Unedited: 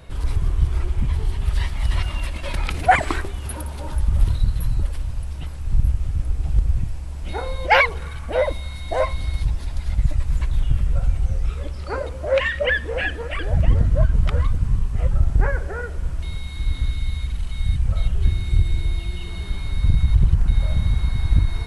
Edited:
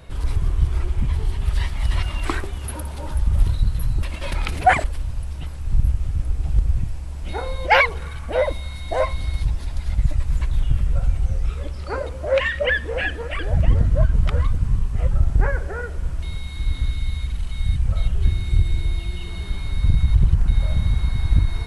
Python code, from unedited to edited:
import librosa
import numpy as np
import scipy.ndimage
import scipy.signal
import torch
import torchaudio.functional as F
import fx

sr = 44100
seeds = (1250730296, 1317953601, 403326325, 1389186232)

y = fx.edit(x, sr, fx.move(start_s=2.25, length_s=0.81, to_s=4.84), tone=tone)